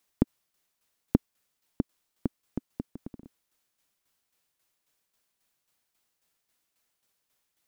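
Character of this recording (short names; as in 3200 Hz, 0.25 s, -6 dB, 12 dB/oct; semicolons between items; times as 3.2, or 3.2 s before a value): tremolo saw down 3.7 Hz, depth 60%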